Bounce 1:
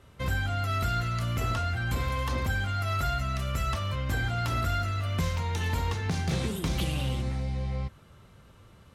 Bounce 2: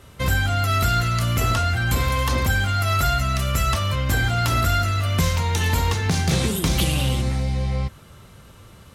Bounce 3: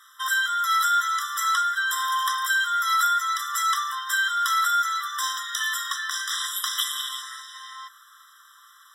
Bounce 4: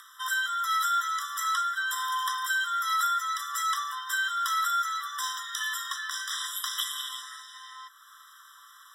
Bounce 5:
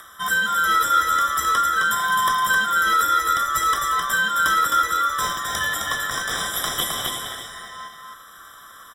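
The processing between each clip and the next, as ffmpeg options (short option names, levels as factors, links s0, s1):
-af "highshelf=f=4900:g=8,volume=2.51"
-filter_complex "[0:a]acrossover=split=160|3500[s0][s1][s2];[s0]asoftclip=type=tanh:threshold=0.0501[s3];[s3][s1][s2]amix=inputs=3:normalize=0,afftfilt=real='re*eq(mod(floor(b*sr/1024/1000),2),1)':imag='im*eq(mod(floor(b*sr/1024/1000),2),1)':win_size=1024:overlap=0.75,volume=1.41"
-af "afreqshift=-16,acompressor=mode=upward:threshold=0.01:ratio=2.5,volume=0.562"
-filter_complex "[0:a]acrossover=split=1800|3700|5600[s0][s1][s2][s3];[s2]acrusher=samples=30:mix=1:aa=0.000001[s4];[s0][s1][s4][s3]amix=inputs=4:normalize=0,aecho=1:1:262:0.631,volume=2.51"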